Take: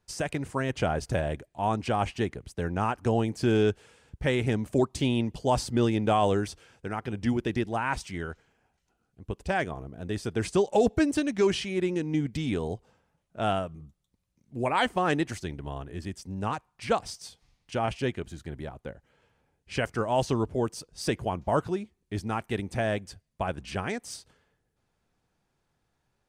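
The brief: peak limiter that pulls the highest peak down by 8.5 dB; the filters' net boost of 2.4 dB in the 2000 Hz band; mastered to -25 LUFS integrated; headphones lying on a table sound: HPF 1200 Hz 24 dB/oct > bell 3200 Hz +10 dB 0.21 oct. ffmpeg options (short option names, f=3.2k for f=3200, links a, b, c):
-af "equalizer=f=2k:t=o:g=3,alimiter=limit=-20dB:level=0:latency=1,highpass=f=1.2k:w=0.5412,highpass=f=1.2k:w=1.3066,equalizer=f=3.2k:t=o:w=0.21:g=10,volume=12.5dB"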